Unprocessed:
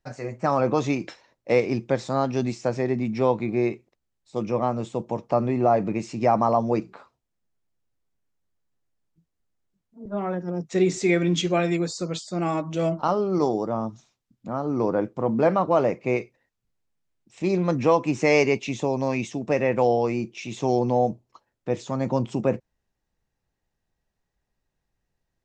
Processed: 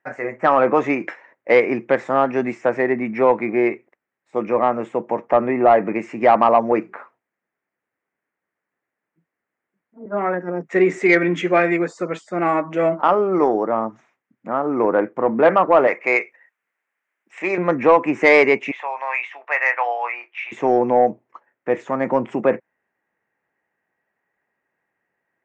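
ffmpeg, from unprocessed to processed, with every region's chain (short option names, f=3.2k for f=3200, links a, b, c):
-filter_complex "[0:a]asettb=1/sr,asplit=3[a][b][c];[a]atrim=end=15.874[d];[b]atrim=start=15.87:end=17.58,asetpts=PTS-STARTPTS,afade=t=in:d=0.004:c=qsin,afade=t=out:st=1.706:d=0.004:c=qsin,highpass=f=1.5k:p=1,acontrast=84[e];[c]atrim=start=17.576[f];[d][e]acrossfade=d=0.004:c1=hsin:c2=qsin[g];[g][f]acrossfade=d=0.004:c1=qsin:c2=hsin,asettb=1/sr,asplit=3[h][i][j];[h]atrim=end=18.714[k];[i]atrim=start=18.71:end=20.52,asetpts=PTS-STARTPTS,afade=t=in:d=0.004:c=qsin,afade=t=out:st=1.806:d=0.004:c=qsin,highpass=f=830:w=0.5412,highpass=f=830:w=1.3066,highshelf=f=5k:t=q:w=1.5:g=-12,asplit=2[l][m];[m]adelay=25,volume=-11.5dB[n];[l][n]amix=inputs=2:normalize=0,atrim=end_sample=79821[o];[j]atrim=start=20.516[p];[k][o]acrossfade=d=0.004:c1=hsin:c2=qsin[q];[q][p]acrossfade=d=0.004:c1=qsin:c2=hsin,highpass=300,highshelf=f=2.9k:t=q:w=3:g=-14,acontrast=86"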